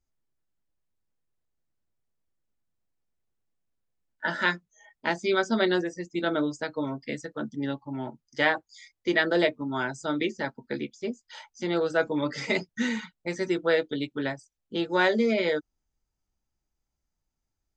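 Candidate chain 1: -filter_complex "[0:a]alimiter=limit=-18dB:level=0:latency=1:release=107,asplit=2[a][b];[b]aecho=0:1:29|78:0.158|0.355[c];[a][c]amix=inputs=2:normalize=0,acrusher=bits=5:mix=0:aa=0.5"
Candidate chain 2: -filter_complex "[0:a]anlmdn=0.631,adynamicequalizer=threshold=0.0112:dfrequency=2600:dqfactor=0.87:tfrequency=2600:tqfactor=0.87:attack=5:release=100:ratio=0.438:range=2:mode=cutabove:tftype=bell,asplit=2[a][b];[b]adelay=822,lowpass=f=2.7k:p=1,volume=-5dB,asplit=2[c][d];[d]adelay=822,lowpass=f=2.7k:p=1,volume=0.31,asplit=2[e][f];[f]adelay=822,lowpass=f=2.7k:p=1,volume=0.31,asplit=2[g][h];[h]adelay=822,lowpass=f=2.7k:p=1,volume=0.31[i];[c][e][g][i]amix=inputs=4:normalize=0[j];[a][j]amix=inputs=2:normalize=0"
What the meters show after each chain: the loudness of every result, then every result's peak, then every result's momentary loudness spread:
-30.5, -28.0 LUFS; -16.0, -9.0 dBFS; 9, 11 LU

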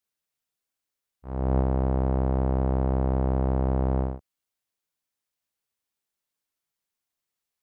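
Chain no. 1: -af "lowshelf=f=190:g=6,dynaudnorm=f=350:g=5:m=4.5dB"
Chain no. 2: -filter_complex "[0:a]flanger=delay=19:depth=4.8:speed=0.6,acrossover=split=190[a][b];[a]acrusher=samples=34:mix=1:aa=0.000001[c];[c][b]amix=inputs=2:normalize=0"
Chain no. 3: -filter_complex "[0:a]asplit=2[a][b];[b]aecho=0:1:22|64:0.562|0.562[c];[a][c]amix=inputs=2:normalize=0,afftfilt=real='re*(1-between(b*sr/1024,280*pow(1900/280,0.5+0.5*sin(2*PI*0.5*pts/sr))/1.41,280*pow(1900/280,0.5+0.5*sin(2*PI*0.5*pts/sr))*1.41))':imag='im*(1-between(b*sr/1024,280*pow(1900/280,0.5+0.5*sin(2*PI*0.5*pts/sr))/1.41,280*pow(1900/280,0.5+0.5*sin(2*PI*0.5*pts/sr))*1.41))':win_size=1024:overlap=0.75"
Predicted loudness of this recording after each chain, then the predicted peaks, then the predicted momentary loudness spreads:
-17.5, -30.5, -26.5 LUFS; -7.0, -15.0, -14.5 dBFS; 6, 7, 7 LU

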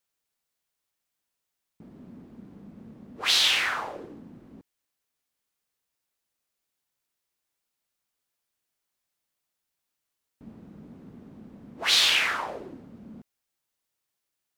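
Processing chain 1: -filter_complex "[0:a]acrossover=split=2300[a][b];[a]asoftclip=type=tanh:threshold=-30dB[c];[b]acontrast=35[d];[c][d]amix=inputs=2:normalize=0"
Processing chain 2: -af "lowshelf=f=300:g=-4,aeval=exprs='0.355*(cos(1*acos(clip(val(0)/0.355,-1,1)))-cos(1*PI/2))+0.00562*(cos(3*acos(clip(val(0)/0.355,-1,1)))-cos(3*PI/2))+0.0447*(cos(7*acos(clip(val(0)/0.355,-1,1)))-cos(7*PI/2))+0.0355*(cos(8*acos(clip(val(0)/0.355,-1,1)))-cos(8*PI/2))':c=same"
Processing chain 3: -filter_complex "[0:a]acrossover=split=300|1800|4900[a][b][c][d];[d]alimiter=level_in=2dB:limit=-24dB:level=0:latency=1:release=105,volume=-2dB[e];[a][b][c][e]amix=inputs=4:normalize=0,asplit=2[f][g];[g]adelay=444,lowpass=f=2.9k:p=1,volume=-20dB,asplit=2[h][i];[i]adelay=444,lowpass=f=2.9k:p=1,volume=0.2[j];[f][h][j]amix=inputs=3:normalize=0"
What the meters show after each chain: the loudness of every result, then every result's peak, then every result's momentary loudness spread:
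-18.0, -23.5, -23.5 LUFS; -5.5, -8.5, -9.5 dBFS; 15, 16, 20 LU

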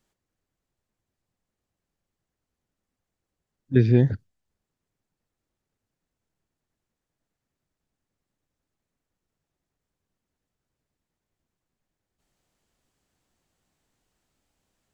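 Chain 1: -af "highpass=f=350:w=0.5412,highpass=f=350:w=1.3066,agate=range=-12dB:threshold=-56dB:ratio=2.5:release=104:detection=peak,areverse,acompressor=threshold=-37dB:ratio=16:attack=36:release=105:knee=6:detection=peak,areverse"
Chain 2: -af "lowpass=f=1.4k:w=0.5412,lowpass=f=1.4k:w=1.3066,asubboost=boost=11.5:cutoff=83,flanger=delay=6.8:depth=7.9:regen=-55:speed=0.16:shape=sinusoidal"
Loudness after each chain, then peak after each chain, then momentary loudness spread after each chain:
-40.5, -20.5 LUFS; -24.0, -8.0 dBFS; 9, 8 LU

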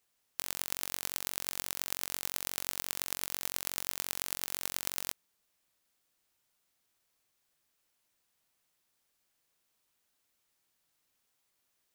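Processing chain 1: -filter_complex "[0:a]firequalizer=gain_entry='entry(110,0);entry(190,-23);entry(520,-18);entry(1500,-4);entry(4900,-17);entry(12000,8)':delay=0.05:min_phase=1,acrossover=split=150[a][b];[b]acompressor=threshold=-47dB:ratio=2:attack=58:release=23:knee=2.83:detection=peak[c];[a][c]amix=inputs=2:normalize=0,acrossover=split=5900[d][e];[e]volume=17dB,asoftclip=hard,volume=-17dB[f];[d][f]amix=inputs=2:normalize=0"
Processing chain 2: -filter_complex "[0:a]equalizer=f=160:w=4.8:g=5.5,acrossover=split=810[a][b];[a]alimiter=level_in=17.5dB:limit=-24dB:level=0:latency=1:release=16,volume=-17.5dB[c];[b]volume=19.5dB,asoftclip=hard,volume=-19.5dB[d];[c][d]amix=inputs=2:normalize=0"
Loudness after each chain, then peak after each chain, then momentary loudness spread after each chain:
-37.0, -41.5 LUFS; -14.5, -19.5 dBFS; 3, 3 LU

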